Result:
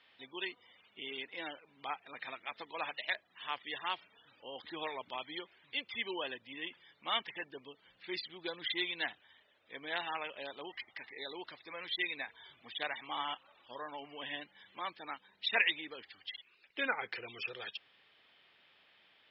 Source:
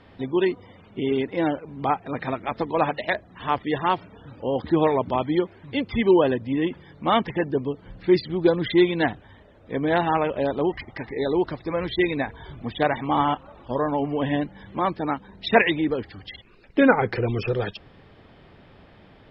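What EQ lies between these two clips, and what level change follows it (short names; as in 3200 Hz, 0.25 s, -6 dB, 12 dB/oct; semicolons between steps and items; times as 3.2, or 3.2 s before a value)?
band-pass 3100 Hz, Q 1.6; -3.0 dB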